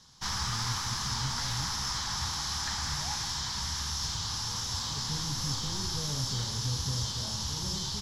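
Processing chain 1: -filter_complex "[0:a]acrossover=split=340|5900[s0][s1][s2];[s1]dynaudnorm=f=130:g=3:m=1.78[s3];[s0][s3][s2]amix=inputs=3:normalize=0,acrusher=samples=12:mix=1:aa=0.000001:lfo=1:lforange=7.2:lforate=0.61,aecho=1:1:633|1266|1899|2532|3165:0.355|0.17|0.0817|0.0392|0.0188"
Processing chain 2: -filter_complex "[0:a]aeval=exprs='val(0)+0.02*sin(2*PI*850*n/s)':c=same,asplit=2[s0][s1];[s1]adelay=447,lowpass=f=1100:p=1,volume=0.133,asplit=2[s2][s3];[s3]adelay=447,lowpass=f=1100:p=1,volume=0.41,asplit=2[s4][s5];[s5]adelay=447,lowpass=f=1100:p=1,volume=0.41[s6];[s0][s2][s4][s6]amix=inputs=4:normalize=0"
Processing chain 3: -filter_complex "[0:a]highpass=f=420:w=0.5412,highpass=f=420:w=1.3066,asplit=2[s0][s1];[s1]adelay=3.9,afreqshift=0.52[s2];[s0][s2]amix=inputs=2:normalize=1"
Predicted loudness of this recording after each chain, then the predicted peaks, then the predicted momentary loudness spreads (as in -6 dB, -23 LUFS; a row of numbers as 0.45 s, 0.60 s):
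-29.5 LUFS, -30.0 LUFS, -35.0 LUFS; -17.0 dBFS, -18.0 dBFS, -24.5 dBFS; 2 LU, 1 LU, 2 LU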